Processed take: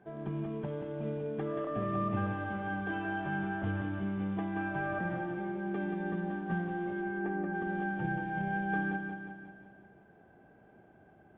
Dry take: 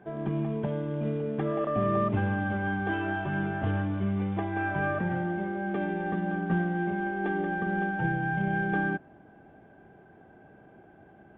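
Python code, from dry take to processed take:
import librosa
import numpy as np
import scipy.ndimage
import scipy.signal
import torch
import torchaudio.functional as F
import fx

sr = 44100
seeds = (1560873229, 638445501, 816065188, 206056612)

y = fx.lowpass(x, sr, hz=fx.line((7.01, 2800.0), (7.53, 1900.0)), slope=24, at=(7.01, 7.53), fade=0.02)
y = fx.echo_feedback(y, sr, ms=179, feedback_pct=56, wet_db=-6.0)
y = F.gain(torch.from_numpy(y), -7.0).numpy()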